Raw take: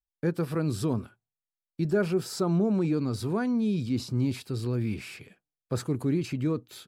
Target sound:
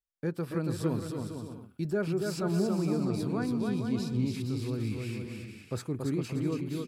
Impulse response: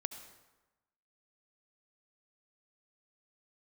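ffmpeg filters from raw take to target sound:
-filter_complex "[0:a]asettb=1/sr,asplit=3[a][b][c];[a]atrim=end=0.874[d];[b]atrim=start=0.87:end=1.92,asetpts=PTS-STARTPTS,afade=t=in:d=0.004:c=qsin,afade=t=out:st=1.046:d=0.004:c=qsin,highshelf=f=7.4k:g=9.5[e];[c]atrim=start=1.916[f];[d][e]acrossfade=d=0.004:c1=hsin:c2=qsin[g];[g][f]acrossfade=d=0.004:c1=qsin:c2=hsin,asplit=2[h][i];[i]aecho=0:1:280|462|580.3|657.2|707.2:0.631|0.398|0.251|0.158|0.1[j];[h][j]amix=inputs=2:normalize=0,volume=-5dB"

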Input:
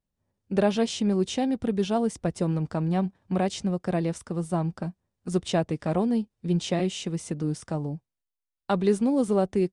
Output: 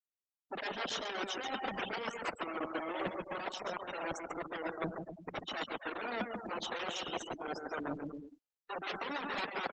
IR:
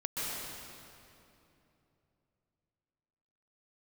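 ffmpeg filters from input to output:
-filter_complex "[0:a]acrossover=split=1100[a][b];[a]aeval=exprs='(mod(16.8*val(0)+1,2)-1)/16.8':c=same[c];[c][b]amix=inputs=2:normalize=0,highpass=f=250:w=0.5412,highpass=f=250:w=1.3066,areverse,acompressor=threshold=-38dB:ratio=10,areverse,aecho=1:1:140|252|341.6|413.3|470.6:0.631|0.398|0.251|0.158|0.1,afftfilt=real='re*gte(hypot(re,im),0.0126)':imag='im*gte(hypot(re,im),0.0126)':win_size=1024:overlap=0.75,volume=4dB" -ar 48000 -c:a libopus -b:a 10k

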